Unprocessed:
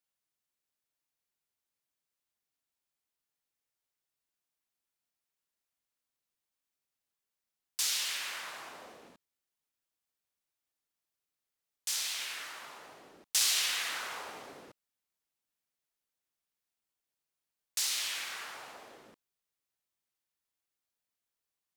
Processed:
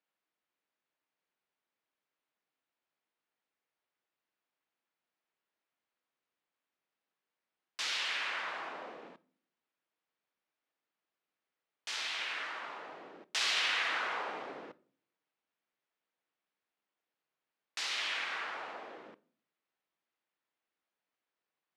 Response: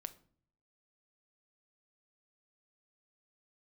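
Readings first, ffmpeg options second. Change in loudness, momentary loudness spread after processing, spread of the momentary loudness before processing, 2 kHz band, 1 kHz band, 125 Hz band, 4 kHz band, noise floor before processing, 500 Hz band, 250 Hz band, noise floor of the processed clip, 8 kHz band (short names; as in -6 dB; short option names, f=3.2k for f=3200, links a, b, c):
-2.5 dB, 19 LU, 21 LU, +4.0 dB, +5.5 dB, n/a, -1.5 dB, under -85 dBFS, +5.5 dB, +4.5 dB, under -85 dBFS, -12.5 dB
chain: -filter_complex "[0:a]highpass=220,lowpass=2.6k,asplit=2[a][b];[1:a]atrim=start_sample=2205[c];[b][c]afir=irnorm=-1:irlink=0,volume=3.5dB[d];[a][d]amix=inputs=2:normalize=0"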